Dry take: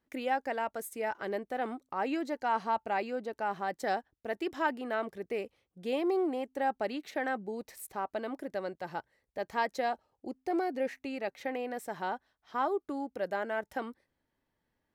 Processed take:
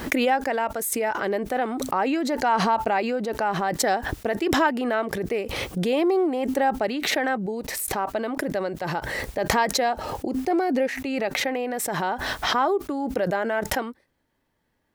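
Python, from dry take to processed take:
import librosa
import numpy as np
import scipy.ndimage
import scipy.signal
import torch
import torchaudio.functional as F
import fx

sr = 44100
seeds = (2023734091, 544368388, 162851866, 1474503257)

y = fx.pre_swell(x, sr, db_per_s=23.0)
y = y * 10.0 ** (8.0 / 20.0)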